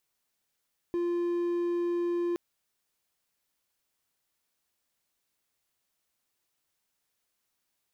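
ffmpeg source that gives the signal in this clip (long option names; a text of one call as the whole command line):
ffmpeg -f lavfi -i "aevalsrc='0.0596*(1-4*abs(mod(347*t+0.25,1)-0.5))':duration=1.42:sample_rate=44100" out.wav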